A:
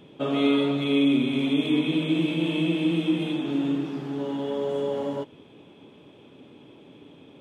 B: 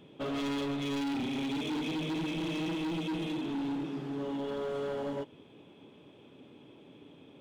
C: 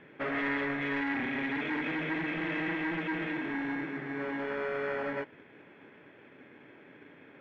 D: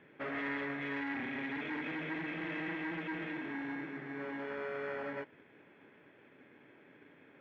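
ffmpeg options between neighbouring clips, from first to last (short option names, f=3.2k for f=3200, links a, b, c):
-af "asoftclip=type=hard:threshold=-26.5dB,volume=-5dB"
-filter_complex "[0:a]asplit=2[a][b];[b]acrusher=samples=23:mix=1:aa=0.000001,volume=-5.5dB[c];[a][c]amix=inputs=2:normalize=0,lowpass=f=1.9k:t=q:w=8.8,lowshelf=f=350:g=-8.5"
-af "highpass=43,volume=-6dB"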